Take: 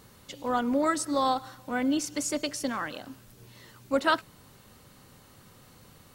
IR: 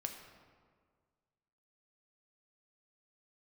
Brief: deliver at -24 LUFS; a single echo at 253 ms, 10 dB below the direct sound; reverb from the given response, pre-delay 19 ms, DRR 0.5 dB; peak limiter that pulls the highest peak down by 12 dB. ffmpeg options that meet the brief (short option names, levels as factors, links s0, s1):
-filter_complex "[0:a]alimiter=limit=0.0708:level=0:latency=1,aecho=1:1:253:0.316,asplit=2[s0][s1];[1:a]atrim=start_sample=2205,adelay=19[s2];[s1][s2]afir=irnorm=-1:irlink=0,volume=1.06[s3];[s0][s3]amix=inputs=2:normalize=0,volume=2.11"